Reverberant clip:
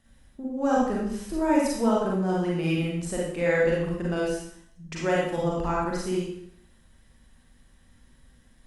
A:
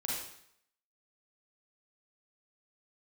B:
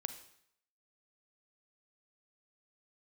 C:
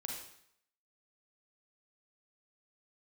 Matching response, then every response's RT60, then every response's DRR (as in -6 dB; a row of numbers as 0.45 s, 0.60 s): A; 0.70 s, 0.70 s, 0.70 s; -5.0 dB, 9.0 dB, -0.5 dB